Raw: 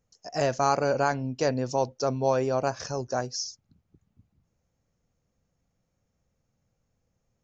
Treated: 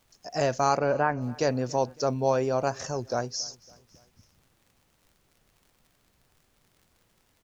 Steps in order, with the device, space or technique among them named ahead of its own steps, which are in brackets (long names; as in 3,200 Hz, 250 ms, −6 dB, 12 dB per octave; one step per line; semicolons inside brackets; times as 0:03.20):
warped LP (wow of a warped record 33 1/3 rpm, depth 100 cents; surface crackle 77 per second −49 dBFS; pink noise bed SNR 38 dB)
0:00.77–0:01.20: low-pass filter 4,100 Hz → 1,900 Hz 24 dB per octave
repeating echo 278 ms, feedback 53%, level −23.5 dB